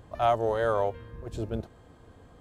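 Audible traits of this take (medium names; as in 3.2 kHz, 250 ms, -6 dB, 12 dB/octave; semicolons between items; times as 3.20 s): noise floor -55 dBFS; spectral tilt -5.0 dB/octave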